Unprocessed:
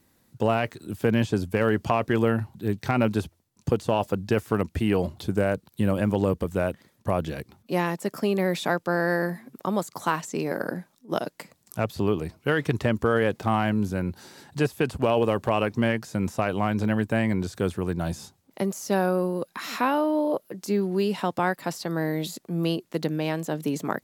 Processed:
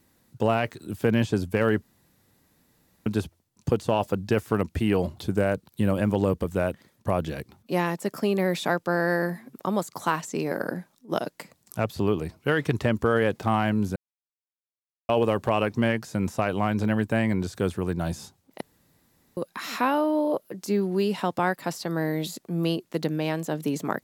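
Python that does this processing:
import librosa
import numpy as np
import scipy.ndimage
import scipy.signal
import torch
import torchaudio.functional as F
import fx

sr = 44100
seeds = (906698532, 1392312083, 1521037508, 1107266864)

y = fx.edit(x, sr, fx.room_tone_fill(start_s=1.82, length_s=1.24),
    fx.silence(start_s=13.96, length_s=1.13),
    fx.room_tone_fill(start_s=18.61, length_s=0.76), tone=tone)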